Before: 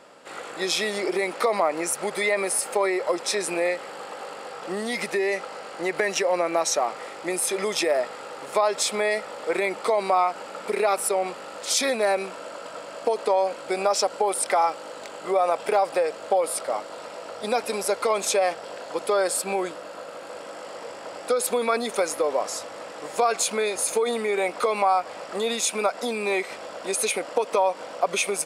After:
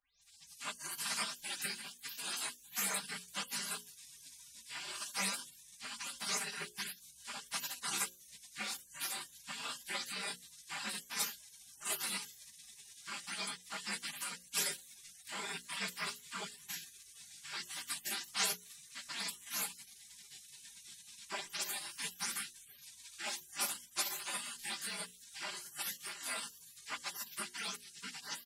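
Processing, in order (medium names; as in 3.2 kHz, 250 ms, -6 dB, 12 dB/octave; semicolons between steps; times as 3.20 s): delay that grows with frequency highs late, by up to 216 ms; on a send at -12.5 dB: tilt EQ +2.5 dB/octave + reverberation RT60 0.20 s, pre-delay 3 ms; on the sum: chorus 1.8 Hz, delay 16.5 ms, depth 4.1 ms; spectral gate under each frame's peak -30 dB weak; hum notches 60/120/180/240/300/360/420/480/540 Hz; comb 5 ms, depth 66%; trim +4.5 dB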